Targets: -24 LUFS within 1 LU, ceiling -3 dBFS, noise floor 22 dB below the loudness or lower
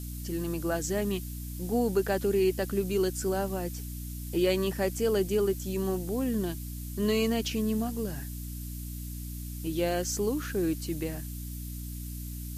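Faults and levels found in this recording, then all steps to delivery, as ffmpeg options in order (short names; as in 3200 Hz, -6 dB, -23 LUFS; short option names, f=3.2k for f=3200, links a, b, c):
hum 60 Hz; harmonics up to 300 Hz; hum level -36 dBFS; noise floor -38 dBFS; noise floor target -53 dBFS; loudness -31.0 LUFS; peak -15.0 dBFS; loudness target -24.0 LUFS
-> -af "bandreject=f=60:t=h:w=6,bandreject=f=120:t=h:w=6,bandreject=f=180:t=h:w=6,bandreject=f=240:t=h:w=6,bandreject=f=300:t=h:w=6"
-af "afftdn=nr=15:nf=-38"
-af "volume=7dB"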